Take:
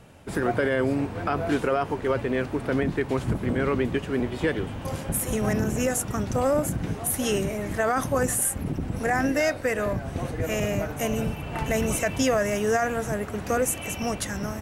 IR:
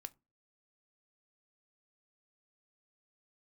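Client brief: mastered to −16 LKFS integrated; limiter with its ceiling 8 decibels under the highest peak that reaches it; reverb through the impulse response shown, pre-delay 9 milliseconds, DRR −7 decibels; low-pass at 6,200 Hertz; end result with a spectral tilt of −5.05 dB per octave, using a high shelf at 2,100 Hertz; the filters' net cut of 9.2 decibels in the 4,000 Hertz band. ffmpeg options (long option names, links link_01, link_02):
-filter_complex "[0:a]lowpass=6200,highshelf=frequency=2100:gain=-4.5,equalizer=frequency=4000:width_type=o:gain=-8.5,alimiter=limit=-21dB:level=0:latency=1,asplit=2[link_01][link_02];[1:a]atrim=start_sample=2205,adelay=9[link_03];[link_02][link_03]afir=irnorm=-1:irlink=0,volume=12.5dB[link_04];[link_01][link_04]amix=inputs=2:normalize=0,volume=7dB"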